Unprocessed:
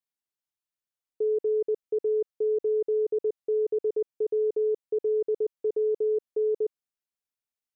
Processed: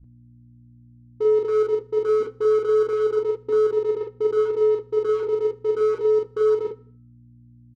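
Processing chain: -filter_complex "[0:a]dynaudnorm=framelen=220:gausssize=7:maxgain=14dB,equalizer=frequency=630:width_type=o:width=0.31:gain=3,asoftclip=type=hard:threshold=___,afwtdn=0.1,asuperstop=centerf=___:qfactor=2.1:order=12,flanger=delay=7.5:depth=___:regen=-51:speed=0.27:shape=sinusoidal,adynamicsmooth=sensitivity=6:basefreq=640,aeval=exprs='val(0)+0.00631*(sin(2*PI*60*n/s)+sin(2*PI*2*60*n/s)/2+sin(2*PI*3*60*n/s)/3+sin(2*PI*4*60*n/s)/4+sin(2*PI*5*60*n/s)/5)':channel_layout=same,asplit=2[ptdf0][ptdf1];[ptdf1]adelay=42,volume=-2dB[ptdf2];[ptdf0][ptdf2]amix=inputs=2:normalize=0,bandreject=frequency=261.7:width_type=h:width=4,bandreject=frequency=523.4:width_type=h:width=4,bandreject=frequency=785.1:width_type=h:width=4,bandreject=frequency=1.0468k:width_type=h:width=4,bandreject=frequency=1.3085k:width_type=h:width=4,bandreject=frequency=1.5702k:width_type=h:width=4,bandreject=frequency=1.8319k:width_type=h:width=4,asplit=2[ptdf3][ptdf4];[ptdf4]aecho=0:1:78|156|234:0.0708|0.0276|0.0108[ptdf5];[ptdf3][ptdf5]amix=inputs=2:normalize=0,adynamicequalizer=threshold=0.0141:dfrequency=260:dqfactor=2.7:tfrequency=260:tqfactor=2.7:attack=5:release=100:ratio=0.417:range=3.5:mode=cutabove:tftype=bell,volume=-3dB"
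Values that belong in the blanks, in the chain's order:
-13.5dB, 650, 8.5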